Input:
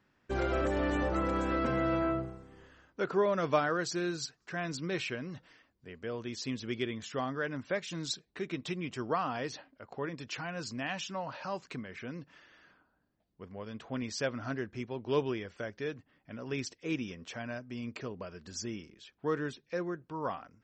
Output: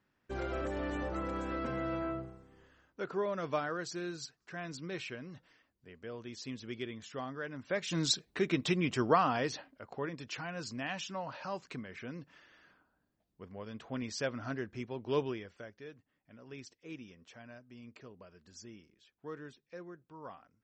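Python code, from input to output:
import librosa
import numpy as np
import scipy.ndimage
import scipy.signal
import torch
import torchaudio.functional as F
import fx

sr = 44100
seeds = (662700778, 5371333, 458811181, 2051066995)

y = fx.gain(x, sr, db=fx.line((7.57, -6.0), (7.98, 6.0), (9.02, 6.0), (10.19, -2.0), (15.21, -2.0), (15.84, -12.0)))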